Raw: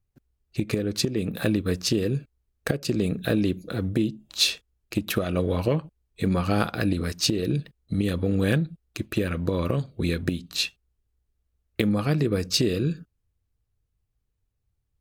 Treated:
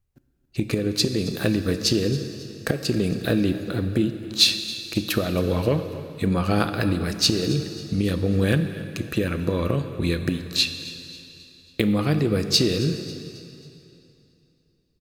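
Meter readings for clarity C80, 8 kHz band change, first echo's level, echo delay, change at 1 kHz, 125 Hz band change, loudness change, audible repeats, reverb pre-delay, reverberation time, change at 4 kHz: 9.5 dB, +2.5 dB, −18.0 dB, 272 ms, +2.0 dB, +2.0 dB, +2.5 dB, 3, 7 ms, 2.8 s, +5.5 dB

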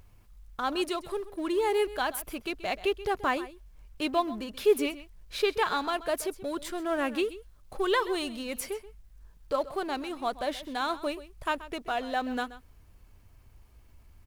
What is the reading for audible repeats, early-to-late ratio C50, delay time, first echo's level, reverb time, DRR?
1, no reverb audible, 130 ms, −16.0 dB, no reverb audible, no reverb audible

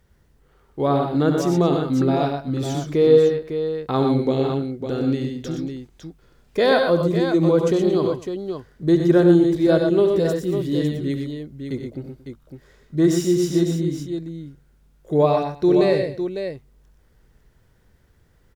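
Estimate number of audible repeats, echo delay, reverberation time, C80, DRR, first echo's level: 4, 68 ms, no reverb audible, no reverb audible, no reverb audible, −12.0 dB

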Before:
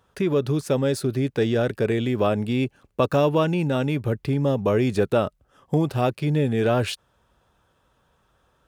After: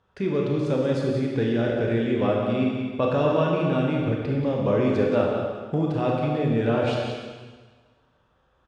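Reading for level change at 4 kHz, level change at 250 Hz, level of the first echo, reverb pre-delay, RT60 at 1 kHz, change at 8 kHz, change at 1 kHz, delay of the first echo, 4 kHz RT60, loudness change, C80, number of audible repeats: −3.5 dB, 0.0 dB, −7.5 dB, 22 ms, 1.5 s, can't be measured, −1.0 dB, 183 ms, 1.5 s, −1.0 dB, 1.5 dB, 1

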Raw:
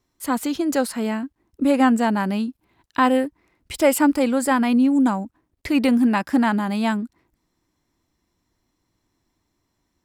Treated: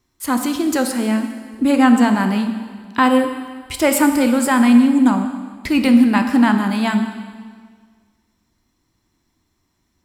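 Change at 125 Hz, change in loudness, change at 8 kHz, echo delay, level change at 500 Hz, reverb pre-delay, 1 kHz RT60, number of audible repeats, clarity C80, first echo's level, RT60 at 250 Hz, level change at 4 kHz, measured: can't be measured, +4.5 dB, +5.5 dB, no echo audible, +1.0 dB, 4 ms, 1.7 s, no echo audible, 9.0 dB, no echo audible, 1.7 s, +5.5 dB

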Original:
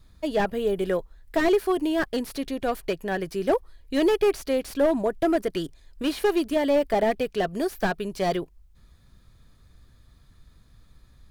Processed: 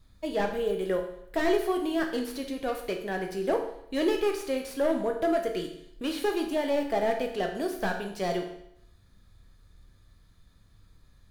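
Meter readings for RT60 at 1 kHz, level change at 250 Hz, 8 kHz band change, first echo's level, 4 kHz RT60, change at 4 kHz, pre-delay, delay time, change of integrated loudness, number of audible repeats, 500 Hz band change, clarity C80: 0.75 s, −4.5 dB, −3.0 dB, no echo audible, 0.70 s, −3.0 dB, 11 ms, no echo audible, −4.0 dB, no echo audible, −4.0 dB, 10.0 dB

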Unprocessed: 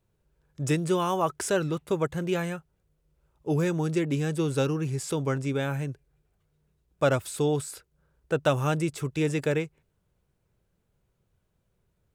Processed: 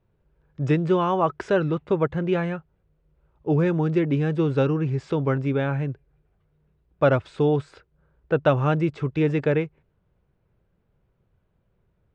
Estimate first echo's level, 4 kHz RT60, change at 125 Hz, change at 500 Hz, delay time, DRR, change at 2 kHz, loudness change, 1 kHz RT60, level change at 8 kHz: no echo audible, no reverb audible, +5.0 dB, +4.5 dB, no echo audible, no reverb audible, +2.5 dB, +4.5 dB, no reverb audible, below −15 dB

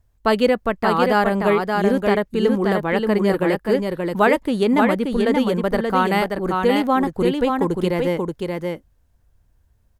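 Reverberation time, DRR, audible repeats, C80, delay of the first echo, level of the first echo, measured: no reverb audible, no reverb audible, 1, no reverb audible, 579 ms, −4.0 dB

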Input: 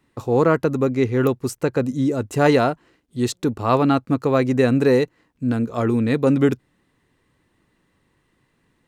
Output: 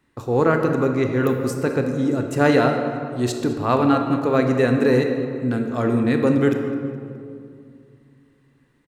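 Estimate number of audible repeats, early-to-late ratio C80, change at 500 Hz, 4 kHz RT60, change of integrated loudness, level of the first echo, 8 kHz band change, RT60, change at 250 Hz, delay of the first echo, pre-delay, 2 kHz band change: 1, 6.5 dB, 0.0 dB, 1.3 s, −0.5 dB, −18.0 dB, −1.5 dB, 2.4 s, 0.0 dB, 209 ms, 25 ms, +2.0 dB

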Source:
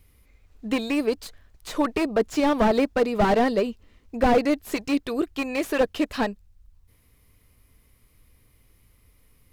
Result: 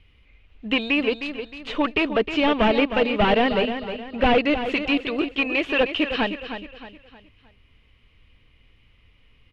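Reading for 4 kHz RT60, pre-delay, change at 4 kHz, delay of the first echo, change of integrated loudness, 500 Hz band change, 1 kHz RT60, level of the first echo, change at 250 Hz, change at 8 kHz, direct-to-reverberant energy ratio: no reverb audible, no reverb audible, +9.0 dB, 311 ms, +2.0 dB, +1.0 dB, no reverb audible, −9.5 dB, +0.5 dB, below −10 dB, no reverb audible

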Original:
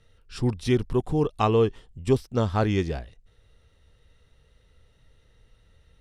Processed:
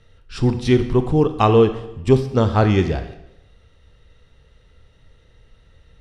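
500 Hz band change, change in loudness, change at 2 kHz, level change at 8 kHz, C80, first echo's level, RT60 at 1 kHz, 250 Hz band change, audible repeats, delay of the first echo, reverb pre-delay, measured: +7.5 dB, +7.5 dB, +7.0 dB, can't be measured, 13.0 dB, no echo audible, 0.85 s, +7.5 dB, no echo audible, no echo audible, 21 ms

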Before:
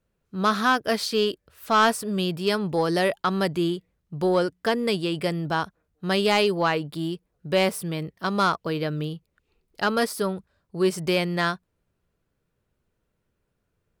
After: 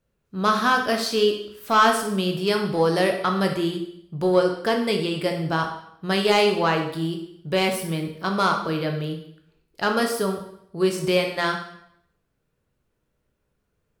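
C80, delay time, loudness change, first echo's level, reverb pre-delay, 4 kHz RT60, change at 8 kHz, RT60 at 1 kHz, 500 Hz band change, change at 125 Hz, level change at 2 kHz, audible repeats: 10.0 dB, no echo audible, +2.0 dB, no echo audible, 7 ms, 0.65 s, +1.5 dB, 0.70 s, +2.5 dB, +1.0 dB, +1.5 dB, no echo audible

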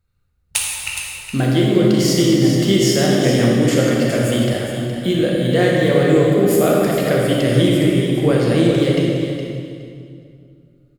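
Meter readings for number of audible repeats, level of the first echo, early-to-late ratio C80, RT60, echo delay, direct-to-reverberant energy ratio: 2, −9.0 dB, −0.5 dB, 2.4 s, 416 ms, −3.5 dB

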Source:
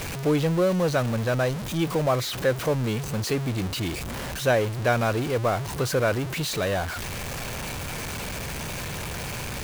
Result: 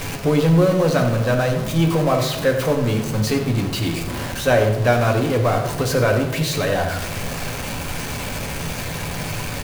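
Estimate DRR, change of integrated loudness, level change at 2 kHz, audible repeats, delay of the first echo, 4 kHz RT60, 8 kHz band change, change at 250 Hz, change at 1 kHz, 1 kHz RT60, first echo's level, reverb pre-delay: 2.0 dB, +6.0 dB, +5.0 dB, 1, 92 ms, 0.60 s, +4.5 dB, +7.0 dB, +5.5 dB, 1.0 s, −11.5 dB, 4 ms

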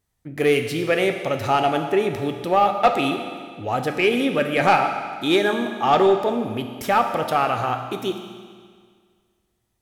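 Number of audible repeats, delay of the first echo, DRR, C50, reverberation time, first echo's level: no echo audible, no echo audible, 5.0 dB, 7.0 dB, 1.9 s, no echo audible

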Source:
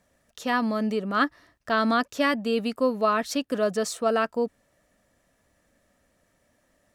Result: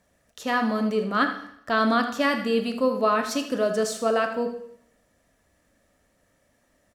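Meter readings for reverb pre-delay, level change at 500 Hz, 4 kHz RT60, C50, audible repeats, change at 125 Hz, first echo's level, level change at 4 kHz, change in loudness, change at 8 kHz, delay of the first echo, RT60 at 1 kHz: 7 ms, +1.5 dB, 0.65 s, 8.0 dB, 1, can't be measured, −11.5 dB, +1.0 dB, +1.0 dB, +1.0 dB, 79 ms, 0.75 s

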